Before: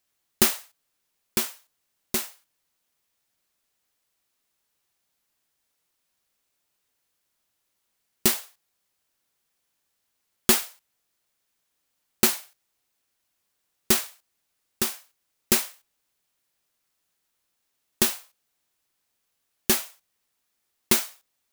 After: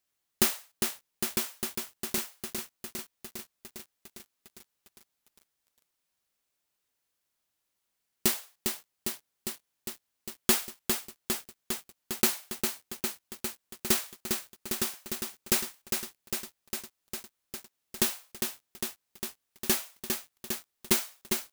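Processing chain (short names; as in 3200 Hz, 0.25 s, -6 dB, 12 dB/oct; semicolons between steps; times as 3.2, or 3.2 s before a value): lo-fi delay 0.404 s, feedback 80%, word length 7-bit, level -5 dB; gain -5 dB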